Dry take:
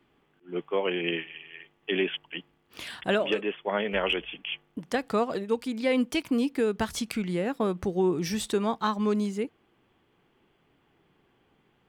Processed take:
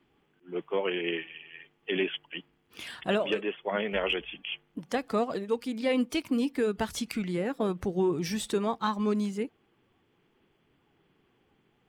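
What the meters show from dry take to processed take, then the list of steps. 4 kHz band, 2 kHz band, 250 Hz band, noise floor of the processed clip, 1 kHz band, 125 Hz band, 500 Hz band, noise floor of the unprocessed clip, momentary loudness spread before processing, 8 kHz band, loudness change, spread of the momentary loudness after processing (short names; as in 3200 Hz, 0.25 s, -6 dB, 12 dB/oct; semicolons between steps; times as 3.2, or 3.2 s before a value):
-2.0 dB, -2.5 dB, -1.5 dB, -70 dBFS, -2.0 dB, -1.5 dB, -2.0 dB, -68 dBFS, 11 LU, -2.0 dB, -2.0 dB, 11 LU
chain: bin magnitudes rounded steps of 15 dB; gain -1.5 dB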